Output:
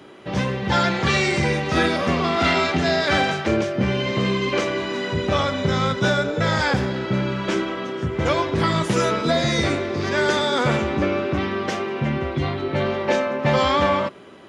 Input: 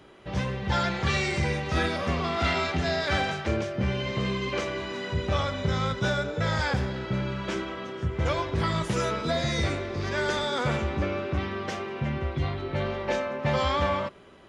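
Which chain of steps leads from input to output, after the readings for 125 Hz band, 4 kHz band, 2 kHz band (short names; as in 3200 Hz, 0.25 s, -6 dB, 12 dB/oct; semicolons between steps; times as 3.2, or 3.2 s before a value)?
+4.0 dB, +7.0 dB, +7.0 dB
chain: HPF 120 Hz 12 dB/oct; bell 290 Hz +3.5 dB 0.77 oct; gain +7 dB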